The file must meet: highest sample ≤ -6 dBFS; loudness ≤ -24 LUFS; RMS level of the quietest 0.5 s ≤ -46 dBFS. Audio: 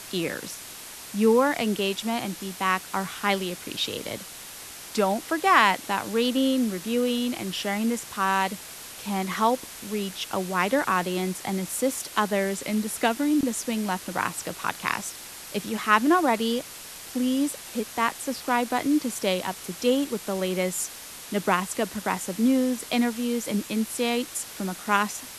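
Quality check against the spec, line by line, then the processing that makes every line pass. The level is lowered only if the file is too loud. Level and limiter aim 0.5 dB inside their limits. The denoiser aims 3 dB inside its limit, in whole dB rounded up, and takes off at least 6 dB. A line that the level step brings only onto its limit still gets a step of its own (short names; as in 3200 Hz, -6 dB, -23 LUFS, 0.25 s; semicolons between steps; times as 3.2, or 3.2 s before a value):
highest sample -4.0 dBFS: fail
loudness -26.0 LUFS: OK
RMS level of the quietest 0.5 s -41 dBFS: fail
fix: denoiser 8 dB, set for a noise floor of -41 dBFS; limiter -6.5 dBFS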